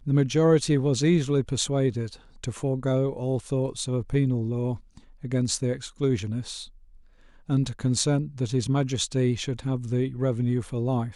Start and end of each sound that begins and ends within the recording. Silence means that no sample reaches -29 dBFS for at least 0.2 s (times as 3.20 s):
2.44–4.75 s
5.24–6.62 s